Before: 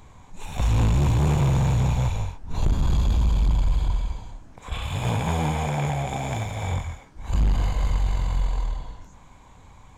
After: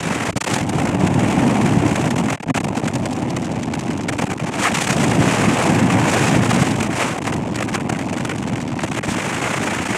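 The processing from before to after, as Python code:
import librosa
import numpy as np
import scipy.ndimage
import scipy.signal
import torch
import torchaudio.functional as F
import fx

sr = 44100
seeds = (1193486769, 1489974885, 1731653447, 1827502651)

y = fx.fuzz(x, sr, gain_db=56.0, gate_db=-54.0)
y = fx.noise_vocoder(y, sr, seeds[0], bands=4)
y = fx.dynamic_eq(y, sr, hz=4700.0, q=1.1, threshold_db=-36.0, ratio=4.0, max_db=-7)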